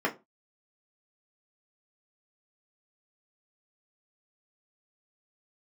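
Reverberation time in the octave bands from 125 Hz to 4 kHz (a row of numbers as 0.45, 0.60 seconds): 0.30, 0.30, 0.25, 0.25, 0.20, 0.20 seconds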